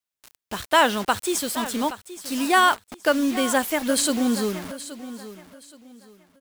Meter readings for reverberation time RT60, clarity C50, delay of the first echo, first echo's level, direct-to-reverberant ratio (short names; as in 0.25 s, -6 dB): none, none, 0.823 s, -14.5 dB, none